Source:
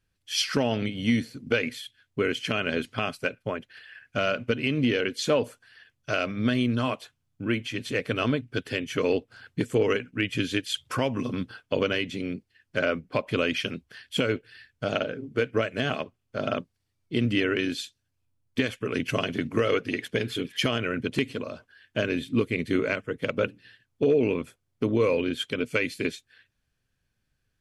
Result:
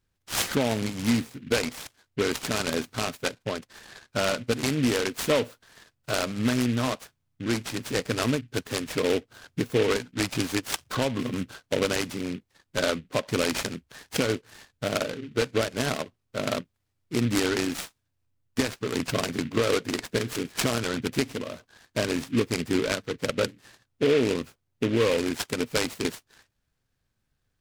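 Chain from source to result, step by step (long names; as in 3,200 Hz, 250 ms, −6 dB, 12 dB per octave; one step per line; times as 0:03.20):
short delay modulated by noise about 2,200 Hz, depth 0.085 ms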